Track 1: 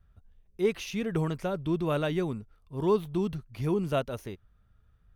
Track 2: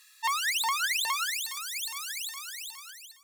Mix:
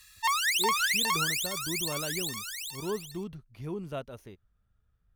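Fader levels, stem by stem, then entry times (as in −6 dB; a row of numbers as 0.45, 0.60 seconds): −8.5, +1.5 decibels; 0.00, 0.00 seconds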